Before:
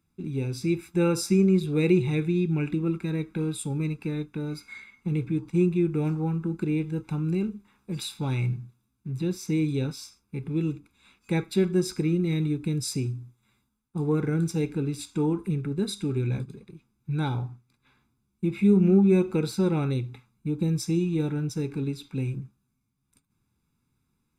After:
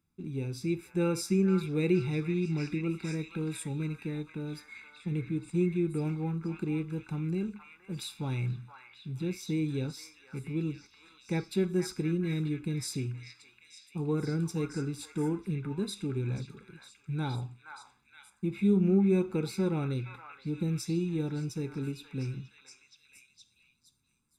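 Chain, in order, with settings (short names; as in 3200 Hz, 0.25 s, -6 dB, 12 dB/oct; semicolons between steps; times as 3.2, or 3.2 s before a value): delay with a stepping band-pass 0.471 s, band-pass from 1400 Hz, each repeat 0.7 oct, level -2 dB; gain -5.5 dB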